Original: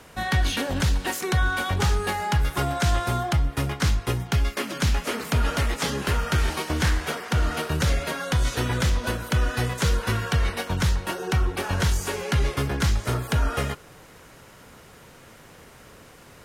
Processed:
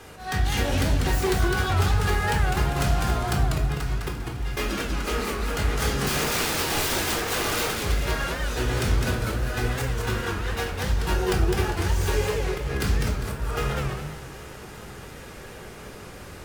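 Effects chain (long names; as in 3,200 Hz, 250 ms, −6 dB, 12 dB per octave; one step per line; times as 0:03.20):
phase distortion by the signal itself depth 0.12 ms
0:06.04–0:07.72: wrap-around overflow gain 24.5 dB
downward compressor 6 to 1, threshold −27 dBFS, peak gain reduction 9.5 dB
volume swells 207 ms
feedback echo with a long and a short gap by turns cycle 1,106 ms, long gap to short 3 to 1, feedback 68%, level −23 dB
convolution reverb RT60 0.55 s, pre-delay 3 ms, DRR 1 dB
feedback echo with a swinging delay time 200 ms, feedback 33%, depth 198 cents, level −3.5 dB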